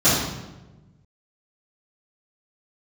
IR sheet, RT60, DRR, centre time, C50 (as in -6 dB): 1.1 s, -15.0 dB, 73 ms, -0.5 dB